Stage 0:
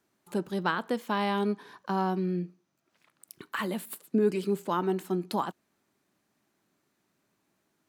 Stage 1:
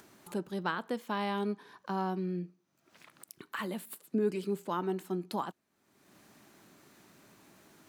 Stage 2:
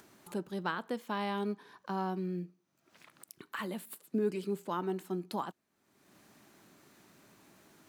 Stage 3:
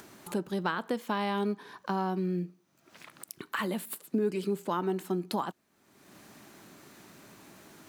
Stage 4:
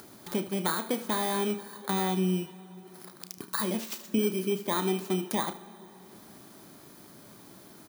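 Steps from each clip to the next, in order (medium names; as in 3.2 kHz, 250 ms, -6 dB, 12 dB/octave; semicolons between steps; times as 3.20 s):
upward compressor, threshold -37 dBFS; trim -5 dB
short-mantissa float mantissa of 6-bit; trim -1.5 dB
compression 2:1, threshold -37 dBFS, peak gain reduction 6 dB; trim +8 dB
bit-reversed sample order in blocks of 16 samples; early reflections 32 ms -11 dB, 76 ms -14 dB; plate-style reverb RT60 4.1 s, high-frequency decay 0.8×, DRR 15.5 dB; trim +1.5 dB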